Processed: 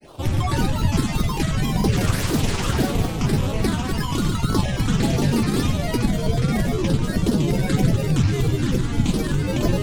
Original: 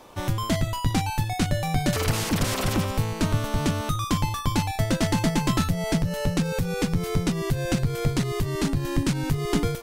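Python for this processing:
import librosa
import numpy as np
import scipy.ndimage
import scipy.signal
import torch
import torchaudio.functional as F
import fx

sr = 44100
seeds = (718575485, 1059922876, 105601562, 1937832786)

p1 = fx.rider(x, sr, range_db=10, speed_s=0.5)
p2 = x + F.gain(torch.from_numpy(p1), -0.5).numpy()
p3 = fx.phaser_stages(p2, sr, stages=8, low_hz=620.0, high_hz=2100.0, hz=1.8, feedback_pct=5)
p4 = fx.room_flutter(p3, sr, wall_m=11.5, rt60_s=1.4)
p5 = fx.granulator(p4, sr, seeds[0], grain_ms=100.0, per_s=20.0, spray_ms=29.0, spread_st=7)
y = F.gain(torch.from_numpy(p5), -2.5).numpy()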